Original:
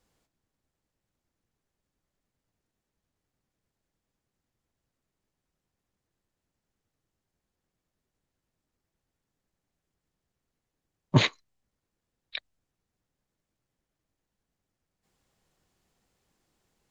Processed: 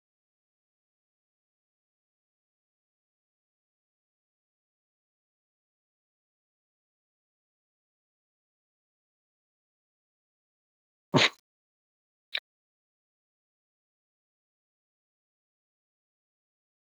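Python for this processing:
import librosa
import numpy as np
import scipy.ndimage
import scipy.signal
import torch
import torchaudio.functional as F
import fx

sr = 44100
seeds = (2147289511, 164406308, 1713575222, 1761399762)

p1 = 10.0 ** (-17.0 / 20.0) * np.tanh(x / 10.0 ** (-17.0 / 20.0))
p2 = x + (p1 * librosa.db_to_amplitude(-4.5))
p3 = scipy.signal.sosfilt(scipy.signal.butter(2, 250.0, 'highpass', fs=sr, output='sos'), p2)
y = fx.quant_dither(p3, sr, seeds[0], bits=10, dither='none')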